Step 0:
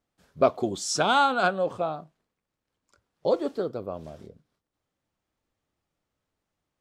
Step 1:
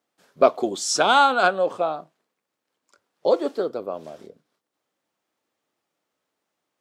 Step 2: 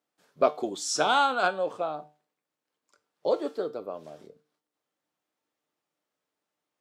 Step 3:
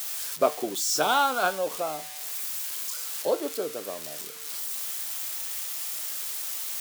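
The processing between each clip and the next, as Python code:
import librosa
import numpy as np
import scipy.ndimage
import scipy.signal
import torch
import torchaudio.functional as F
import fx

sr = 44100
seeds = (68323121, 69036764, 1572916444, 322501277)

y1 = scipy.signal.sosfilt(scipy.signal.butter(2, 290.0, 'highpass', fs=sr, output='sos'), x)
y1 = y1 * librosa.db_to_amplitude(5.0)
y2 = fx.comb_fb(y1, sr, f0_hz=150.0, decay_s=0.33, harmonics='all', damping=0.0, mix_pct=60)
y3 = y2 + 0.5 * 10.0 ** (-24.5 / 20.0) * np.diff(np.sign(y2), prepend=np.sign(y2[:1]))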